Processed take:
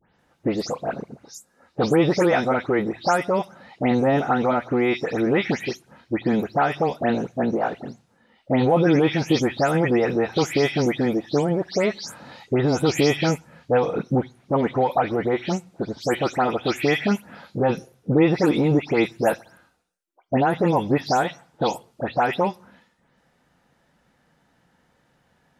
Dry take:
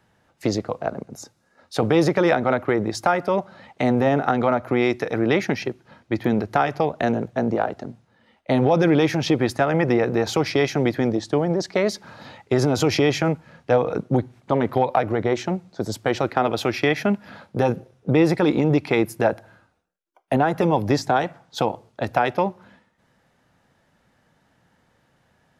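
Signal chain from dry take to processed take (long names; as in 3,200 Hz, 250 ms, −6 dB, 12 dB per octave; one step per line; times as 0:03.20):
every frequency bin delayed by itself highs late, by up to 184 ms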